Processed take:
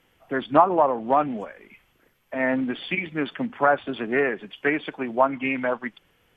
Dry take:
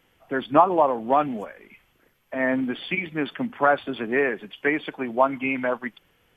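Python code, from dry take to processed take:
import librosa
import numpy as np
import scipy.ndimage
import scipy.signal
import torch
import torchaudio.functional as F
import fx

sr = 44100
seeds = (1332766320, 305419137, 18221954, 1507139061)

y = fx.env_lowpass_down(x, sr, base_hz=2600.0, full_db=-16.0)
y = fx.doppler_dist(y, sr, depth_ms=0.12)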